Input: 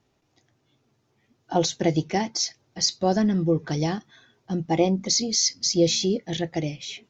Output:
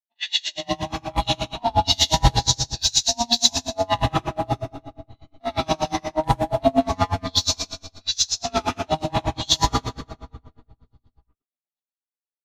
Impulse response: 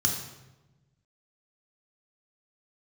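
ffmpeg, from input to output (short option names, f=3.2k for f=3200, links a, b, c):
-filter_complex "[0:a]areverse,agate=range=-48dB:threshold=-49dB:ratio=16:detection=peak,equalizer=f=2.6k:w=0.56:g=2.5,asplit=2[a][b];[b]acompressor=threshold=-28dB:ratio=8,volume=-2.5dB[c];[a][c]amix=inputs=2:normalize=0,volume=18dB,asoftclip=hard,volume=-18dB,aeval=exprs='val(0)*sin(2*PI*470*n/s)':c=same,atempo=0.57,acrossover=split=260|980[d][e][f];[d]acrusher=bits=5:dc=4:mix=0:aa=0.000001[g];[g][e][f]amix=inputs=3:normalize=0[h];[1:a]atrim=start_sample=2205,asetrate=26460,aresample=44100[i];[h][i]afir=irnorm=-1:irlink=0,aeval=exprs='val(0)*pow(10,-32*(0.5-0.5*cos(2*PI*8.4*n/s))/20)':c=same,volume=-3dB"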